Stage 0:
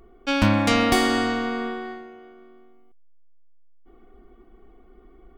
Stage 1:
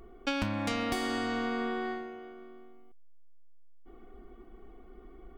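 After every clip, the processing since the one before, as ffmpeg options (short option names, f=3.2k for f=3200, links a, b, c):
-af "acompressor=threshold=-28dB:ratio=16"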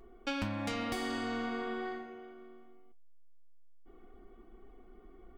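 -af "flanger=delay=7.3:depth=4.3:regen=-58:speed=0.85:shape=triangular"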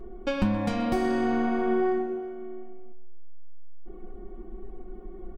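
-filter_complex "[0:a]tiltshelf=f=970:g=7.5,aecho=1:1:5.5:0.62,asplit=2[a][b];[b]adelay=127,lowpass=f=4.1k:p=1,volume=-13dB,asplit=2[c][d];[d]adelay=127,lowpass=f=4.1k:p=1,volume=0.42,asplit=2[e][f];[f]adelay=127,lowpass=f=4.1k:p=1,volume=0.42,asplit=2[g][h];[h]adelay=127,lowpass=f=4.1k:p=1,volume=0.42[i];[a][c][e][g][i]amix=inputs=5:normalize=0,volume=5.5dB"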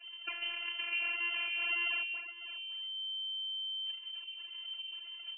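-af "acrusher=samples=41:mix=1:aa=0.000001:lfo=1:lforange=65.6:lforate=1.8,afftfilt=real='hypot(re,im)*cos(PI*b)':imag='0':win_size=512:overlap=0.75,lowpass=f=2.6k:t=q:w=0.5098,lowpass=f=2.6k:t=q:w=0.6013,lowpass=f=2.6k:t=q:w=0.9,lowpass=f=2.6k:t=q:w=2.563,afreqshift=-3100,volume=-7.5dB"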